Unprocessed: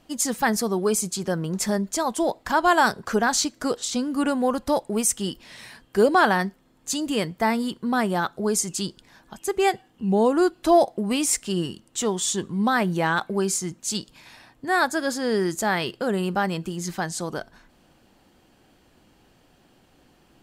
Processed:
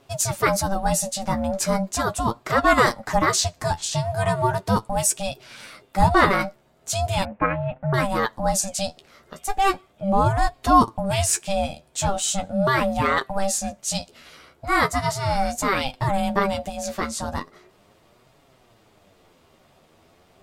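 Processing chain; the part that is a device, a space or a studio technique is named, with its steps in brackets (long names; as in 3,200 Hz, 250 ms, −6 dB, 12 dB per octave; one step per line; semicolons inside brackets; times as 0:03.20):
alien voice (ring modulation 390 Hz; flanger 0.38 Hz, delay 7.1 ms, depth 6.5 ms, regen +32%)
0:07.25–0:07.94: Butterworth low-pass 2,400 Hz 36 dB per octave
level +8 dB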